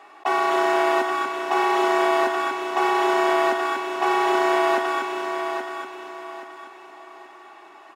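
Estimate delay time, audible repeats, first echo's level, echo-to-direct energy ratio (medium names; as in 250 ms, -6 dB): 826 ms, 3, -7.0 dB, -6.5 dB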